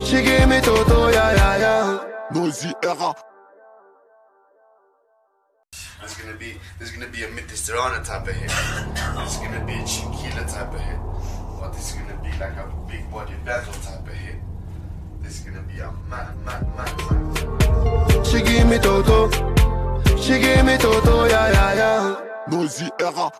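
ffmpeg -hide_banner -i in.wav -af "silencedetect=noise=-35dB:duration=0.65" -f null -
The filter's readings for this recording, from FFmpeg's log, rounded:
silence_start: 3.21
silence_end: 5.73 | silence_duration: 2.52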